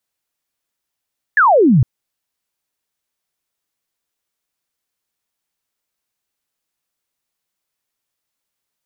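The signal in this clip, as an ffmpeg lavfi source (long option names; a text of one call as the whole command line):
ffmpeg -f lavfi -i "aevalsrc='0.422*clip(t/0.002,0,1)*clip((0.46-t)/0.002,0,1)*sin(2*PI*1800*0.46/log(110/1800)*(exp(log(110/1800)*t/0.46)-1))':duration=0.46:sample_rate=44100" out.wav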